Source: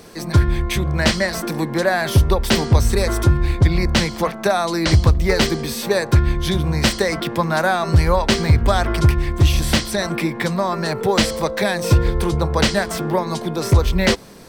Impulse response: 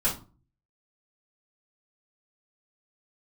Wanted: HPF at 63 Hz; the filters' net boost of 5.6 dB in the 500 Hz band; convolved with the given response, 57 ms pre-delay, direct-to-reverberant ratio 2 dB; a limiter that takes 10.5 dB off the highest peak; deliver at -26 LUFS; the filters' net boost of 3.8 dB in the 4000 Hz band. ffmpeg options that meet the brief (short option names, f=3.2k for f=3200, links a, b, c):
-filter_complex "[0:a]highpass=63,equalizer=f=500:t=o:g=7,equalizer=f=4k:t=o:g=4.5,alimiter=limit=-10.5dB:level=0:latency=1,asplit=2[a][b];[1:a]atrim=start_sample=2205,adelay=57[c];[b][c]afir=irnorm=-1:irlink=0,volume=-11.5dB[d];[a][d]amix=inputs=2:normalize=0,volume=-9dB"